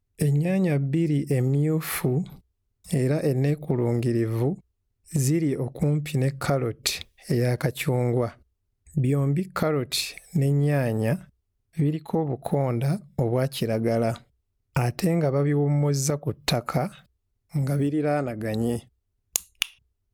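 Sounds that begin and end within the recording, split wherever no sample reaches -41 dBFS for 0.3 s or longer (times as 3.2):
2.85–4.58
5.08–8.33
8.94–11.24
11.77–14.2
14.76–17
17.54–18.8
19.36–19.71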